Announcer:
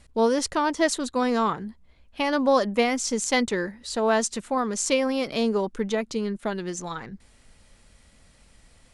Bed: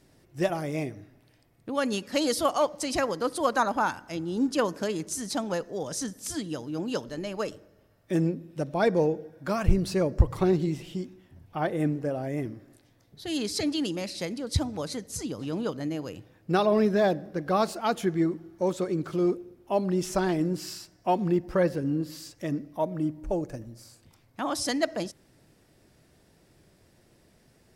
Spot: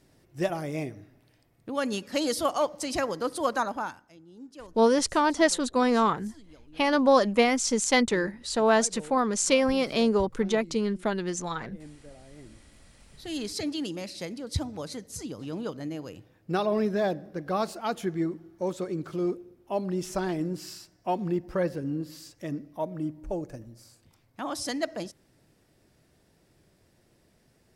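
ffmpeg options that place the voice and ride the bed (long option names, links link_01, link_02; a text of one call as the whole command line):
ffmpeg -i stem1.wav -i stem2.wav -filter_complex "[0:a]adelay=4600,volume=0.5dB[link_01];[1:a]volume=15dB,afade=type=out:start_time=3.48:duration=0.66:silence=0.11885,afade=type=in:start_time=12.36:duration=0.75:silence=0.149624[link_02];[link_01][link_02]amix=inputs=2:normalize=0" out.wav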